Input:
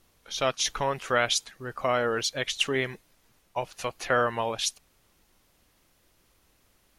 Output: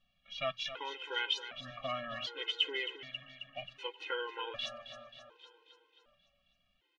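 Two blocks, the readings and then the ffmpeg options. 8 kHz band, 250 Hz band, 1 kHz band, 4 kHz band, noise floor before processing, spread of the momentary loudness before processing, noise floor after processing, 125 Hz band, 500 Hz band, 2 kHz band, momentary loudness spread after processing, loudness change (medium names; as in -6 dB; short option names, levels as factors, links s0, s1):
-25.5 dB, -16.5 dB, -12.5 dB, -5.0 dB, -67 dBFS, 10 LU, -77 dBFS, -17.0 dB, -13.5 dB, -9.5 dB, 15 LU, -10.0 dB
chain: -filter_complex "[0:a]bandreject=f=60:t=h:w=6,bandreject=f=120:t=h:w=6,asplit=2[s0][s1];[s1]adelay=384,lowpass=f=1400:p=1,volume=0.1,asplit=2[s2][s3];[s3]adelay=384,lowpass=f=1400:p=1,volume=0.52,asplit=2[s4][s5];[s5]adelay=384,lowpass=f=1400:p=1,volume=0.52,asplit=2[s6][s7];[s7]adelay=384,lowpass=f=1400:p=1,volume=0.52[s8];[s2][s4][s6][s8]amix=inputs=4:normalize=0[s9];[s0][s9]amix=inputs=2:normalize=0,flanger=delay=5.7:depth=1.7:regen=48:speed=0.3:shape=sinusoidal,lowpass=f=3000:t=q:w=4.7,asplit=2[s10][s11];[s11]aecho=0:1:267|534|801|1068|1335|1602|1869:0.266|0.157|0.0926|0.0546|0.0322|0.019|0.0112[s12];[s10][s12]amix=inputs=2:normalize=0,afftfilt=real='re*gt(sin(2*PI*0.66*pts/sr)*(1-2*mod(floor(b*sr/1024/270),2)),0)':imag='im*gt(sin(2*PI*0.66*pts/sr)*(1-2*mod(floor(b*sr/1024/270),2)),0)':win_size=1024:overlap=0.75,volume=0.447"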